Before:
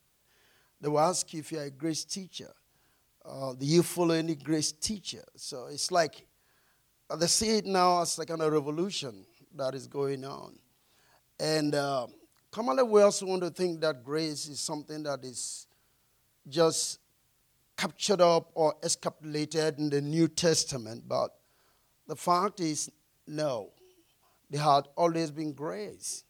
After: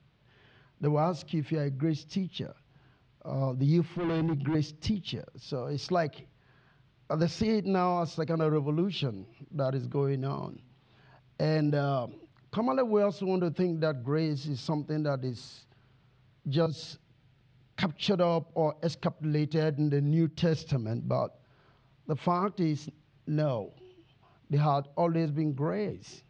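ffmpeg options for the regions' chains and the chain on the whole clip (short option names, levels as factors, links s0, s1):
-filter_complex "[0:a]asettb=1/sr,asplit=3[s0][s1][s2];[s0]atrim=end=3.944[s3];[s1]atrim=start=3.94:end=4.55,asetpts=PTS-STARTPTS,afade=t=in:d=0.004:c=qsin,afade=t=out:st=0.606:d=0.004:c=qsin,highpass=190,bass=f=250:g=8,treble=f=4000:g=-4,asoftclip=type=hard:threshold=0.0237[s4];[s2]atrim=start=4.546[s5];[s3][s4]acrossfade=d=0.004:c1=hsin:c2=qsin[s6];[s6][s5]acrossfade=d=0.004:c1=qsin:c2=hsin,asettb=1/sr,asplit=3[s7][s8][s9];[s7]atrim=end=16.664[s10];[s8]atrim=start=16.66:end=17.83,asetpts=PTS-STARTPTS,afade=t=in:d=0.004:c=qsin,afade=t=out:st=1.166:d=0.004:c=qsin,bandreject=f=1100:w=6.4,acrossover=split=260|3000[s11][s12][s13];[s12]acompressor=threshold=0.00562:ratio=4:attack=3.2:release=140:knee=2.83:detection=peak[s14];[s11][s14][s13]amix=inputs=3:normalize=0[s15];[s9]atrim=start=17.826[s16];[s10][s15]acrossfade=d=0.004:c1=hsin:c2=qsin[s17];[s17][s16]acrossfade=d=0.004:c1=qsin:c2=hsin,lowpass=f=3700:w=0.5412,lowpass=f=3700:w=1.3066,equalizer=f=130:t=o:w=1.5:g=12.5,acompressor=threshold=0.0282:ratio=3,volume=1.68"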